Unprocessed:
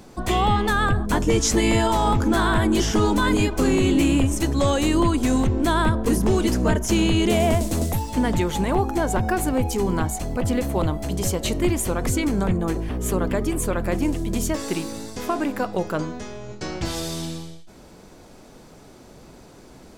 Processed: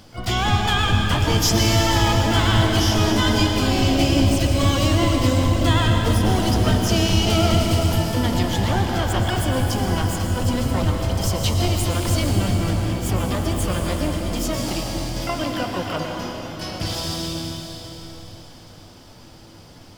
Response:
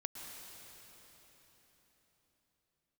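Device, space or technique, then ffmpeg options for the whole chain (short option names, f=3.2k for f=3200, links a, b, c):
shimmer-style reverb: -filter_complex "[0:a]asplit=2[a][b];[b]asetrate=88200,aresample=44100,atempo=0.5,volume=-6dB[c];[a][c]amix=inputs=2:normalize=0[d];[1:a]atrim=start_sample=2205[e];[d][e]afir=irnorm=-1:irlink=0,equalizer=f=100:t=o:w=0.33:g=12,equalizer=f=400:t=o:w=0.33:g=-6,equalizer=f=3.15k:t=o:w=0.33:g=9,equalizer=f=5k:t=o:w=0.33:g=11"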